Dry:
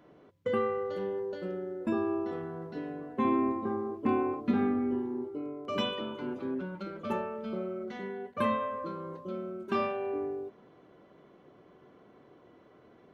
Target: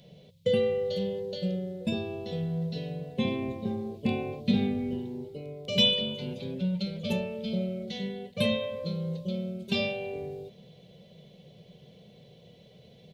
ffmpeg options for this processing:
-af "firequalizer=gain_entry='entry(100,0);entry(170,7);entry(300,-22);entry(490,-2);entry(1200,-28);entry(2300,-2);entry(3700,11);entry(5700,4)':delay=0.05:min_phase=1,volume=2.66"

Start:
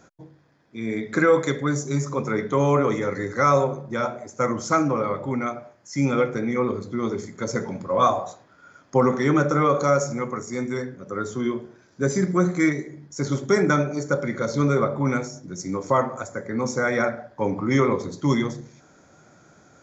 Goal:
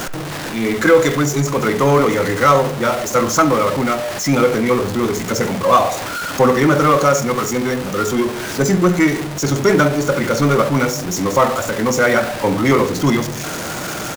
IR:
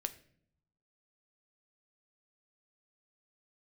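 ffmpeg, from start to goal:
-filter_complex "[0:a]aeval=exprs='val(0)+0.5*0.0501*sgn(val(0))':c=same,acontrast=55,asplit=2[s0][s1];[s1]adelay=100,highpass=300,lowpass=3400,asoftclip=type=hard:threshold=0.251,volume=0.178[s2];[s0][s2]amix=inputs=2:normalize=0,asplit=2[s3][s4];[1:a]atrim=start_sample=2205,lowshelf=f=360:g=-7[s5];[s4][s5]afir=irnorm=-1:irlink=0,volume=1.58[s6];[s3][s6]amix=inputs=2:normalize=0,atempo=1.4,volume=0.501"

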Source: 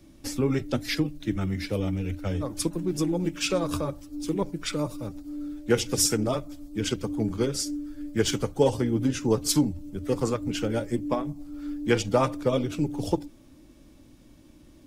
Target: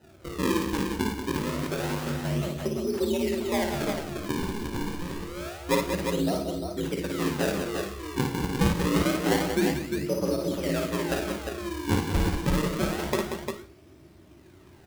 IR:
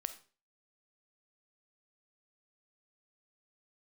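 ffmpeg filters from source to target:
-filter_complex "[0:a]bandreject=f=50:t=h:w=6,bandreject=f=100:t=h:w=6,bandreject=f=150:t=h:w=6,bandreject=f=200:t=h:w=6,bandreject=f=250:t=h:w=6,bandreject=f=300:t=h:w=6,bandreject=f=350:t=h:w=6,bandreject=f=400:t=h:w=6,bandreject=f=450:t=h:w=6,acrossover=split=740[s0][s1];[s1]acompressor=threshold=0.00708:ratio=6[s2];[s0][s2]amix=inputs=2:normalize=0,afreqshift=57,acrusher=samples=39:mix=1:aa=0.000001:lfo=1:lforange=62.4:lforate=0.27,aecho=1:1:55|184|351:0.596|0.422|0.531[s3];[1:a]atrim=start_sample=2205[s4];[s3][s4]afir=irnorm=-1:irlink=0"

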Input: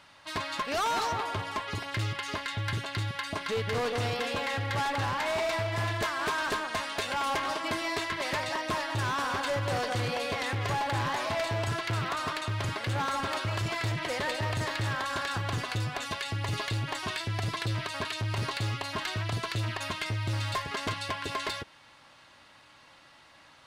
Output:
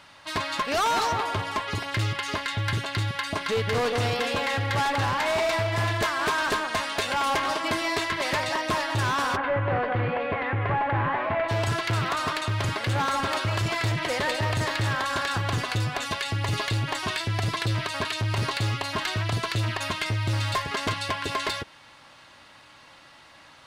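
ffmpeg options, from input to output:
-filter_complex "[0:a]asplit=3[s0][s1][s2];[s0]afade=t=out:st=9.35:d=0.02[s3];[s1]lowpass=f=2300:w=0.5412,lowpass=f=2300:w=1.3066,afade=t=in:st=9.35:d=0.02,afade=t=out:st=11.48:d=0.02[s4];[s2]afade=t=in:st=11.48:d=0.02[s5];[s3][s4][s5]amix=inputs=3:normalize=0,volume=1.78"

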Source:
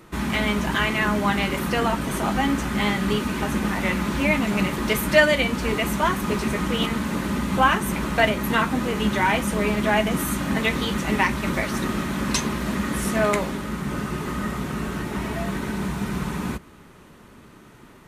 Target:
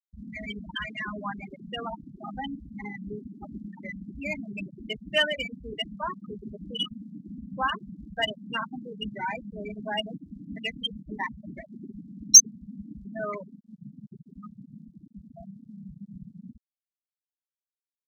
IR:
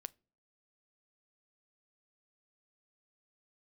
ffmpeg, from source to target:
-af "afftfilt=real='re*gte(hypot(re,im),0.282)':imag='im*gte(hypot(re,im),0.282)':win_size=1024:overlap=0.75,tiltshelf=f=860:g=-4.5,aexciter=amount=13.4:drive=8.5:freq=3500,volume=0.335"

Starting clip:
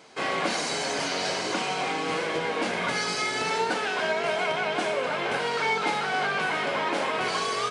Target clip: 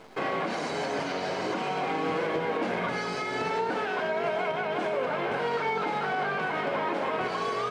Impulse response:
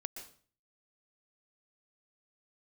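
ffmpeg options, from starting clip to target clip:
-af "acrusher=bits=9:dc=4:mix=0:aa=0.000001,alimiter=limit=0.0708:level=0:latency=1:release=157,lowpass=f=1200:p=1,volume=1.88"

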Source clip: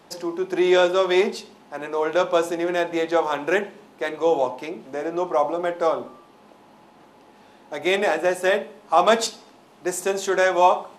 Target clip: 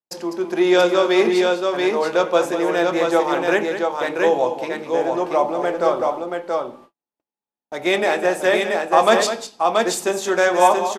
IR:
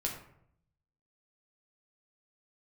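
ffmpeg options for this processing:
-af "agate=range=0.00316:threshold=0.00708:ratio=16:detection=peak,aecho=1:1:200|680:0.316|0.668,volume=1.26"

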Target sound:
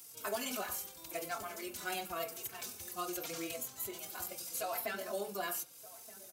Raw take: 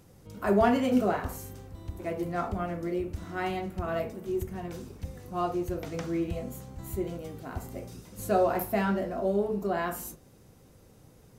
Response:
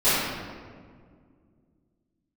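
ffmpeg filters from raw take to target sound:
-filter_complex "[0:a]aderivative,bandreject=f=1900:w=9.4,acrossover=split=550|4800[s0][s1][s2];[s0]acompressor=threshold=0.00126:ratio=4[s3];[s1]acompressor=threshold=0.00251:ratio=4[s4];[s2]acompressor=threshold=0.002:ratio=4[s5];[s3][s4][s5]amix=inputs=3:normalize=0,asoftclip=type=tanh:threshold=0.0133,atempo=1.8,asplit=2[s6][s7];[s7]adelay=1224,volume=0.141,highshelf=f=4000:g=-27.6[s8];[s6][s8]amix=inputs=2:normalize=0,asplit=2[s9][s10];[1:a]atrim=start_sample=2205,afade=t=out:st=0.2:d=0.01,atrim=end_sample=9261[s11];[s10][s11]afir=irnorm=-1:irlink=0,volume=0.02[s12];[s9][s12]amix=inputs=2:normalize=0,asplit=2[s13][s14];[s14]adelay=3.9,afreqshift=-0.87[s15];[s13][s15]amix=inputs=2:normalize=1,volume=7.5"

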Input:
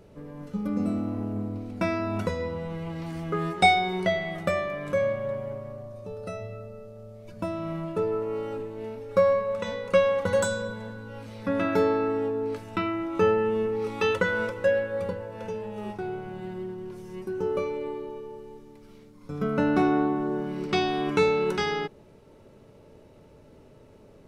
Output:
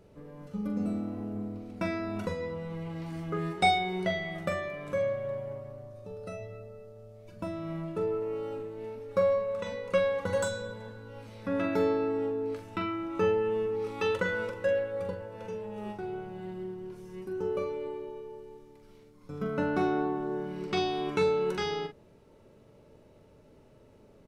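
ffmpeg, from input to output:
-filter_complex "[0:a]asplit=2[s0][s1];[s1]adelay=43,volume=0.398[s2];[s0][s2]amix=inputs=2:normalize=0,volume=0.531"

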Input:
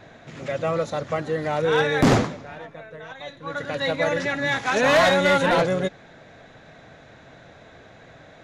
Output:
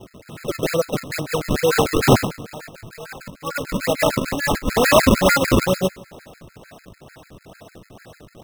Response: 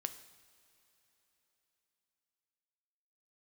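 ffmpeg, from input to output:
-filter_complex "[0:a]acrusher=samples=32:mix=1:aa=0.000001:lfo=1:lforange=51.2:lforate=2.2,asplit=2[s0][s1];[1:a]atrim=start_sample=2205[s2];[s1][s2]afir=irnorm=-1:irlink=0,volume=0.944[s3];[s0][s3]amix=inputs=2:normalize=0,afftfilt=real='re*gt(sin(2*PI*6.7*pts/sr)*(1-2*mod(floor(b*sr/1024/1300),2)),0)':imag='im*gt(sin(2*PI*6.7*pts/sr)*(1-2*mod(floor(b*sr/1024/1300),2)),0)':win_size=1024:overlap=0.75,volume=1.12"

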